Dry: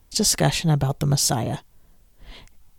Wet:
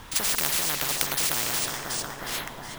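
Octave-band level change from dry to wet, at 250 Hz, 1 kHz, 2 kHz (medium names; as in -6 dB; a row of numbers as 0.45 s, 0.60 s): -15.0 dB, -3.5 dB, +3.5 dB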